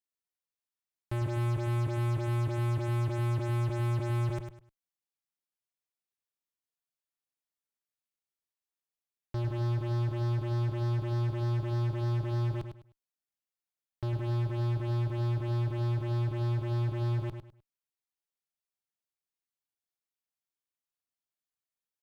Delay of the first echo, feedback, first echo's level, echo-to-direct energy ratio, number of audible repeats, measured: 102 ms, 26%, -7.5 dB, -7.0 dB, 3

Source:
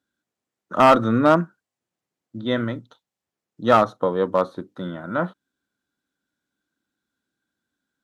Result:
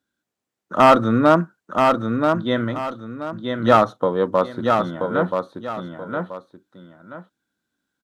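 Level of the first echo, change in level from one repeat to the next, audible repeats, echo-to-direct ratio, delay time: -4.5 dB, -10.5 dB, 2, -4.0 dB, 980 ms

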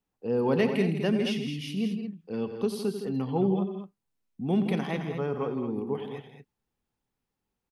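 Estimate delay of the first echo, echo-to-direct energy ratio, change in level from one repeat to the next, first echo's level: 88 ms, -5.5 dB, no regular repeats, -14.5 dB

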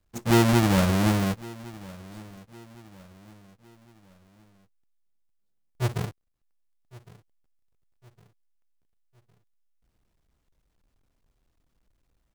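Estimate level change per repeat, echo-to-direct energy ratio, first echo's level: -7.5 dB, -20.0 dB, -21.0 dB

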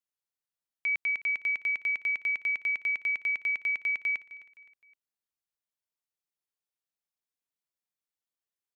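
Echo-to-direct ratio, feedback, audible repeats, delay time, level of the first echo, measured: -16.5 dB, 40%, 3, 259 ms, -17.0 dB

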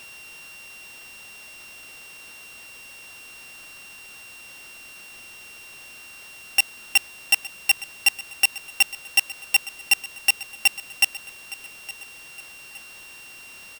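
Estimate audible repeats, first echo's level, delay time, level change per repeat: 2, -17.0 dB, 864 ms, -7.0 dB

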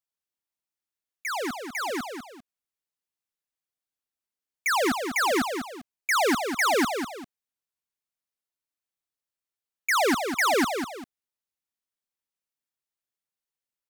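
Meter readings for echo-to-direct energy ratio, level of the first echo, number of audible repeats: -6.5 dB, -7.0 dB, 2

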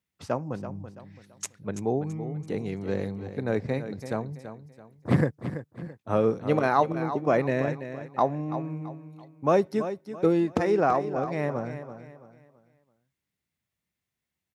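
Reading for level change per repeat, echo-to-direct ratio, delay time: -9.5 dB, -10.5 dB, 333 ms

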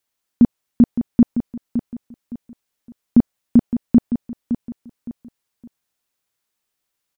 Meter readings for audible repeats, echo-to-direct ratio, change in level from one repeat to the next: 3, -9.5 dB, -10.0 dB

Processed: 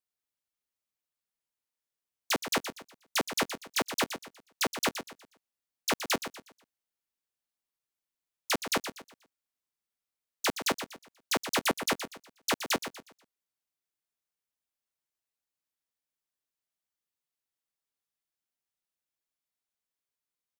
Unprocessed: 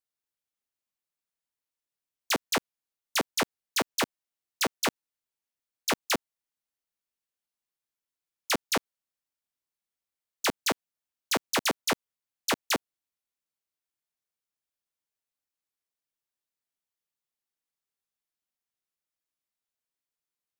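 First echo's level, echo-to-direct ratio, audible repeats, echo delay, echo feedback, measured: -10.0 dB, -9.5 dB, 3, 121 ms, 33%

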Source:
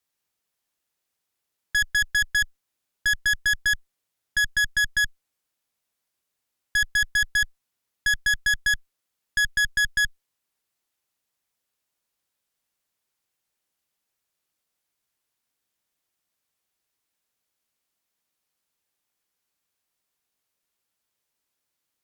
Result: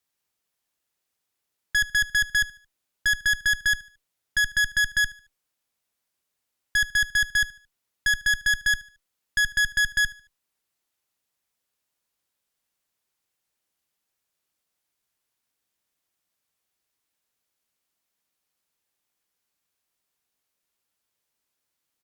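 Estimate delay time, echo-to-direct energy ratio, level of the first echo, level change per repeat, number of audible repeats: 74 ms, -19.5 dB, -20.0 dB, -9.5 dB, 2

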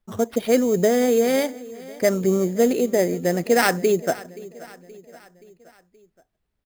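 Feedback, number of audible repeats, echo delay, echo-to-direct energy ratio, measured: 53%, 3, 525 ms, -18.0 dB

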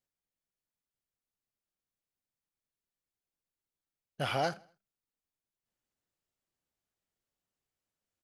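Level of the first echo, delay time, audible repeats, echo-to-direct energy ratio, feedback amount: -23.5 dB, 80 ms, 2, -22.5 dB, 42%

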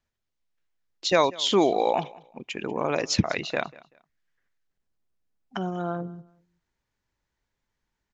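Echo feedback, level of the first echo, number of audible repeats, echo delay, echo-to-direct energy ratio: 26%, -22.0 dB, 2, 191 ms, -21.5 dB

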